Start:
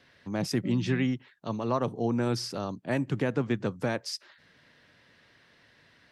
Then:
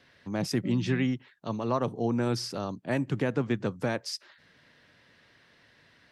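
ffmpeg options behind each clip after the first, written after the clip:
-af anull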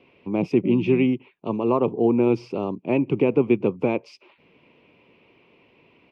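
-af "firequalizer=gain_entry='entry(110,0);entry(180,6);entry(270,8);entry(380,14);entry(600,4);entry(1000,7);entry(1700,-17);entry(2400,12);entry(3800,-11);entry(9700,-26)':delay=0.05:min_phase=1"

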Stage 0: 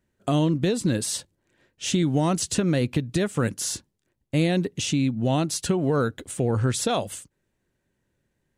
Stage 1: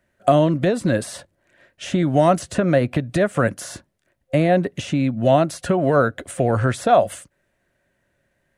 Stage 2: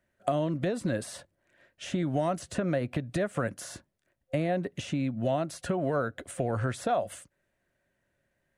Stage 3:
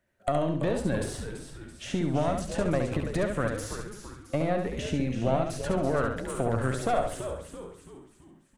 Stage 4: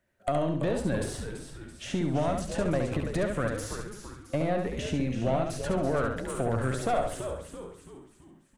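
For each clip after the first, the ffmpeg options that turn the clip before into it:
-filter_complex "[0:a]equalizer=f=1.7k:t=o:w=1.6:g=9.5,acrossover=split=510|1600[a][b][c];[c]acompressor=threshold=-37dB:ratio=6[d];[a][b][d]amix=inputs=3:normalize=0,superequalizer=8b=2.82:16b=1.41,volume=2.5dB"
-af "acompressor=threshold=-18dB:ratio=2.5,volume=-8dB"
-filter_complex "[0:a]asplit=2[a][b];[b]asplit=5[c][d][e][f][g];[c]adelay=333,afreqshift=-99,volume=-9dB[h];[d]adelay=666,afreqshift=-198,volume=-15.6dB[i];[e]adelay=999,afreqshift=-297,volume=-22.1dB[j];[f]adelay=1332,afreqshift=-396,volume=-28.7dB[k];[g]adelay=1665,afreqshift=-495,volume=-35.2dB[l];[h][i][j][k][l]amix=inputs=5:normalize=0[m];[a][m]amix=inputs=2:normalize=0,aeval=exprs='(tanh(7.94*val(0)+0.7)-tanh(0.7))/7.94':c=same,asplit=2[n][o];[o]aecho=0:1:69|138|207|276:0.531|0.159|0.0478|0.0143[p];[n][p]amix=inputs=2:normalize=0,volume=4dB"
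-af "asoftclip=type=tanh:threshold=-15dB"

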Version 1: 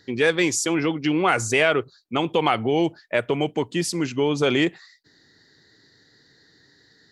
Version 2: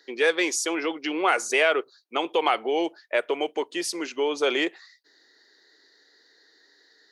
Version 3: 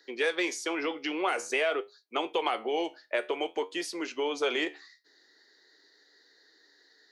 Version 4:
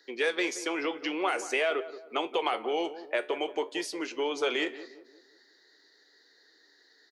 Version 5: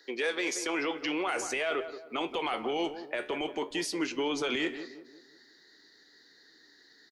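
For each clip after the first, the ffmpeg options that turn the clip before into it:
-af "highpass=f=360:w=0.5412,highpass=f=360:w=1.3066,bandreject=f=7.5k:w=10,volume=-1.5dB"
-filter_complex "[0:a]flanger=delay=9.6:depth=4.7:regen=71:speed=0.5:shape=sinusoidal,acrossover=split=510|3900[a][b][c];[a]acompressor=threshold=-34dB:ratio=4[d];[b]acompressor=threshold=-29dB:ratio=4[e];[c]acompressor=threshold=-43dB:ratio=4[f];[d][e][f]amix=inputs=3:normalize=0,volume=1.5dB"
-filter_complex "[0:a]asplit=2[a][b];[b]adelay=177,lowpass=f=1.1k:p=1,volume=-12.5dB,asplit=2[c][d];[d]adelay=177,lowpass=f=1.1k:p=1,volume=0.46,asplit=2[e][f];[f]adelay=177,lowpass=f=1.1k:p=1,volume=0.46,asplit=2[g][h];[h]adelay=177,lowpass=f=1.1k:p=1,volume=0.46,asplit=2[i][j];[j]adelay=177,lowpass=f=1.1k:p=1,volume=0.46[k];[a][c][e][g][i][k]amix=inputs=6:normalize=0"
-filter_complex "[0:a]alimiter=level_in=0.5dB:limit=-24dB:level=0:latency=1:release=15,volume=-0.5dB,asplit=2[a][b];[b]adelay=130,highpass=300,lowpass=3.4k,asoftclip=type=hard:threshold=-34dB,volume=-27dB[c];[a][c]amix=inputs=2:normalize=0,asubboost=boost=8.5:cutoff=170,volume=3dB"

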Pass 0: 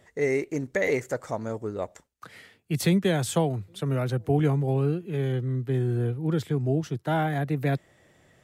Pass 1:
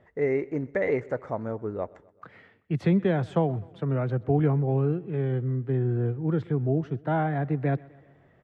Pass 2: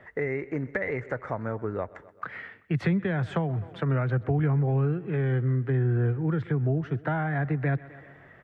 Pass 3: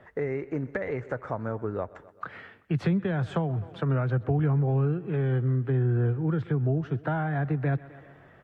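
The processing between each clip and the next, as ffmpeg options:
-af "lowpass=1.7k,aecho=1:1:128|256|384|512:0.0708|0.0382|0.0206|0.0111"
-filter_complex "[0:a]equalizer=f=1.7k:w=0.94:g=11,acrossover=split=140[a][b];[b]acompressor=threshold=-32dB:ratio=6[c];[a][c]amix=inputs=2:normalize=0,volume=4dB"
-af "equalizer=f=2k:t=o:w=0.43:g=-8" -ar 44100 -c:a aac -b:a 64k

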